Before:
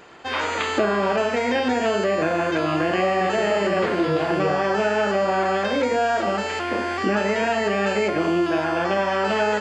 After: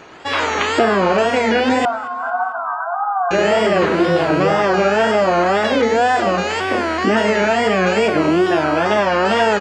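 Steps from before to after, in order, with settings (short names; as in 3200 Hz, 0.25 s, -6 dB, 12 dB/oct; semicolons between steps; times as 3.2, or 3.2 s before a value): wow and flutter 140 cents; 1.85–3.31 brick-wall FIR band-pass 660–1600 Hz; on a send: feedback echo 0.224 s, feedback 49%, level -21 dB; on the sum: gain +6 dB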